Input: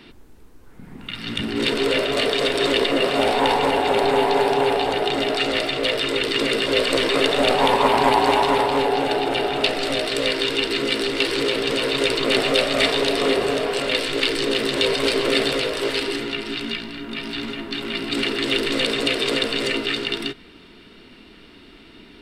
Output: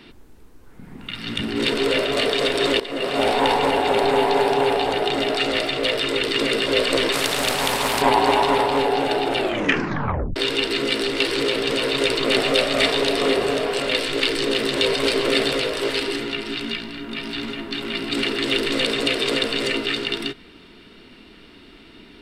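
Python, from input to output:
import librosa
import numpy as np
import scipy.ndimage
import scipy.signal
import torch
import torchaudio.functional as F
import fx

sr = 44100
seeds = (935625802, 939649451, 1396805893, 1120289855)

y = fx.spectral_comp(x, sr, ratio=2.0, at=(7.12, 8.02))
y = fx.edit(y, sr, fx.fade_in_from(start_s=2.8, length_s=0.46, floor_db=-15.5),
    fx.tape_stop(start_s=9.38, length_s=0.98), tone=tone)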